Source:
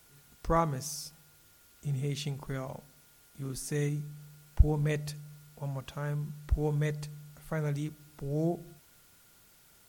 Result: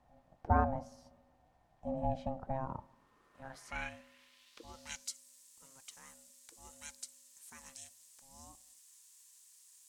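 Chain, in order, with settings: band-pass sweep 340 Hz -> 7700 Hz, 2.56–5.16; ring modulator 400 Hz; gain +10.5 dB

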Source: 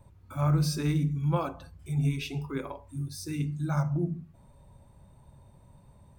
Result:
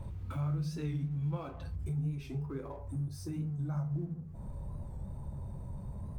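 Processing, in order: G.711 law mismatch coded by mu; bell 3000 Hz +4 dB 1.4 oct, from 1.76 s -7 dB; compressor 3:1, threshold -44 dBFS, peak gain reduction 17.5 dB; tilt -2 dB/oct; reverb, pre-delay 3 ms, DRR 9 dB; record warp 45 rpm, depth 100 cents

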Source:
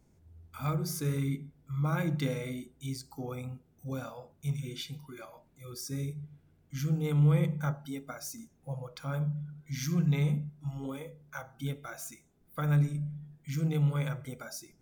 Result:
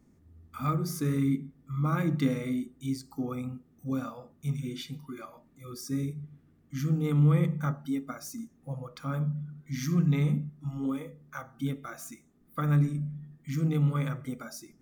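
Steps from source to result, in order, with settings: small resonant body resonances 250/1200/1800 Hz, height 11 dB, ringing for 25 ms; gain -1.5 dB

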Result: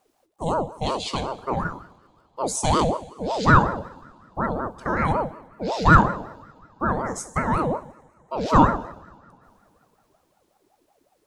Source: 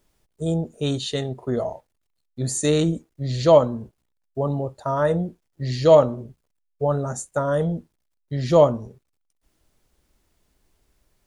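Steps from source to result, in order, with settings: two-slope reverb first 0.72 s, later 2.8 s, from -19 dB, DRR 9 dB; ring modulator with a swept carrier 560 Hz, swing 45%, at 5.4 Hz; gain +1.5 dB

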